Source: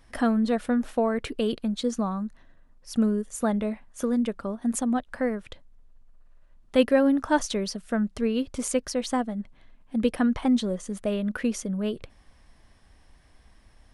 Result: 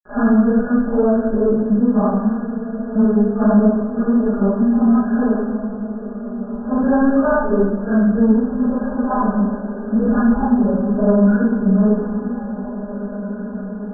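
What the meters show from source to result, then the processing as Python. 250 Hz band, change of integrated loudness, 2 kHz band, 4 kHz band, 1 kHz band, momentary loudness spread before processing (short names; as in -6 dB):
+11.5 dB, +9.5 dB, +6.0 dB, under -40 dB, +8.0 dB, 9 LU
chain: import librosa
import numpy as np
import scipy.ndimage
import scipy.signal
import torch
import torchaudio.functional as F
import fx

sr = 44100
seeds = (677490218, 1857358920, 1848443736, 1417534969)

p1 = fx.phase_scramble(x, sr, seeds[0], window_ms=200)
p2 = fx.hum_notches(p1, sr, base_hz=60, count=7)
p3 = p2 + 0.82 * np.pad(p2, (int(4.9 * sr / 1000.0), 0))[:len(p2)]
p4 = fx.leveller(p3, sr, passes=2)
p5 = fx.level_steps(p4, sr, step_db=21)
p6 = p4 + (p5 * 10.0 ** (-1.5 / 20.0))
p7 = np.where(np.abs(p6) >= 10.0 ** (-30.0 / 20.0), p6, 0.0)
p8 = fx.brickwall_lowpass(p7, sr, high_hz=1700.0)
p9 = p8 + fx.echo_diffused(p8, sr, ms=1993, feedback_pct=41, wet_db=-11.5, dry=0)
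p10 = fx.room_shoebox(p9, sr, seeds[1], volume_m3=2500.0, walls='mixed', distance_m=1.4)
y = p10 * 10.0 ** (-5.0 / 20.0)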